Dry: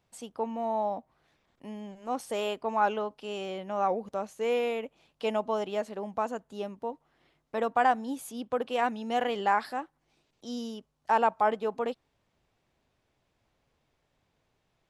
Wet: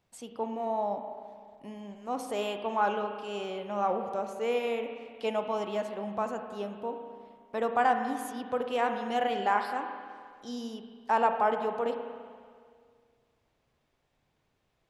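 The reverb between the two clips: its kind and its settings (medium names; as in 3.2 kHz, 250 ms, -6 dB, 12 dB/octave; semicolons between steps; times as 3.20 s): spring tank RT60 2 s, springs 34/49 ms, chirp 70 ms, DRR 5.5 dB; trim -1.5 dB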